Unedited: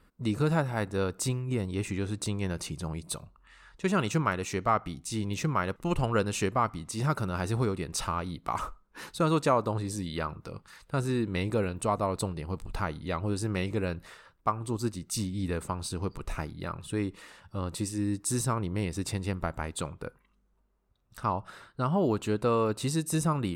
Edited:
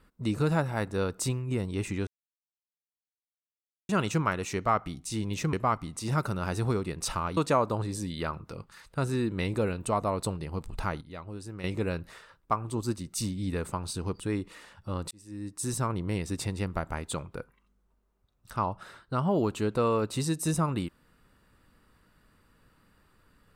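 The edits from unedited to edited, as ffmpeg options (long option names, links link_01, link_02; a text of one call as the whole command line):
ffmpeg -i in.wav -filter_complex "[0:a]asplit=9[link_01][link_02][link_03][link_04][link_05][link_06][link_07][link_08][link_09];[link_01]atrim=end=2.07,asetpts=PTS-STARTPTS,afade=type=out:start_time=2.066:duration=0.004:curve=hsin[link_10];[link_02]atrim=start=2.07:end=3.89,asetpts=PTS-STARTPTS,volume=0[link_11];[link_03]atrim=start=3.89:end=5.532,asetpts=PTS-STARTPTS,afade=type=in:duration=0.004:curve=hsin[link_12];[link_04]atrim=start=6.448:end=8.292[link_13];[link_05]atrim=start=9.328:end=12.972[link_14];[link_06]atrim=start=12.968:end=13.602,asetpts=PTS-STARTPTS,volume=-10dB[link_15];[link_07]atrim=start=13.598:end=16.162[link_16];[link_08]atrim=start=16.868:end=17.78,asetpts=PTS-STARTPTS,afade=type=out:start_time=0.908:duration=0.004:curve=hsin[link_17];[link_09]atrim=start=17.78,asetpts=PTS-STARTPTS,afade=type=in:duration=0.79[link_18];[link_10][link_11][link_12]concat=n=3:v=0:a=1[link_19];[link_19][link_13]acrossfade=duration=0.004:curve1=hsin:curve2=hsin[link_20];[link_20][link_14]acrossfade=duration=0.004:curve1=hsin:curve2=hsin[link_21];[link_21][link_15]acrossfade=duration=0.004:curve1=hsin:curve2=hsin[link_22];[link_22][link_16]acrossfade=duration=0.004:curve1=hsin:curve2=hsin[link_23];[link_17][link_18]concat=n=2:v=0:a=1[link_24];[link_23][link_24]acrossfade=duration=0.004:curve1=hsin:curve2=hsin" out.wav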